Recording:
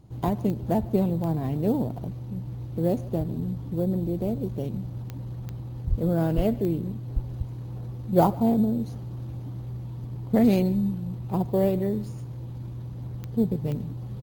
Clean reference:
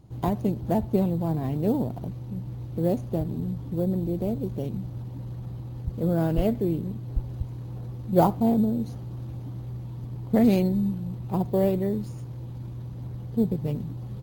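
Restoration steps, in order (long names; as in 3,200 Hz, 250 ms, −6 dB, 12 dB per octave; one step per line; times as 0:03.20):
click removal
high-pass at the plosives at 0:05.89
echo removal 147 ms −21.5 dB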